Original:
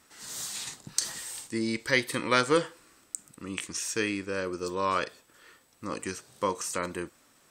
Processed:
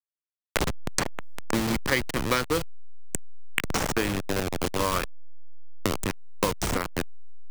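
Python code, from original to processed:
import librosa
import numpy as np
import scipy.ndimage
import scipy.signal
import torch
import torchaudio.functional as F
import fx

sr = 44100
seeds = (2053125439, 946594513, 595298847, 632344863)

y = fx.delta_hold(x, sr, step_db=-24.5)
y = fx.band_squash(y, sr, depth_pct=100)
y = y * librosa.db_to_amplitude(3.5)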